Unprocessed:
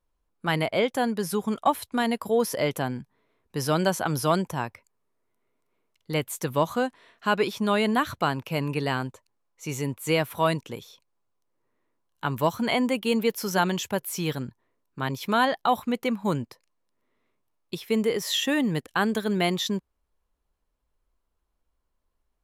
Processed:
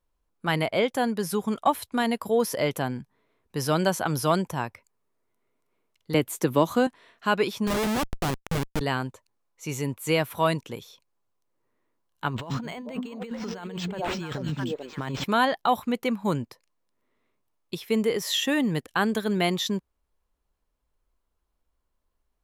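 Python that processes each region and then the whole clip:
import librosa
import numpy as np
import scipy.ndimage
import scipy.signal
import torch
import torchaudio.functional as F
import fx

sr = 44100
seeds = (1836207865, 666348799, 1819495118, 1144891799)

y = fx.chain(x, sr, fx.peak_eq(hz=320.0, db=7.5, octaves=1.0),
    fx.band_squash(depth_pct=40), at=(6.14, 6.87))
y = fx.chain(y, sr, fx.low_shelf(hz=81.0, db=5.5),
    fx.schmitt(flips_db=-26.5), at=(7.67, 8.81))
y = fx.chain(y, sr, fx.echo_stepped(ms=220, hz=190.0, octaves=1.4, feedback_pct=70, wet_db=-2),
    fx.over_compress(threshold_db=-33.0, ratio=-1.0),
    fx.resample_linear(factor=4), at=(12.28, 15.24))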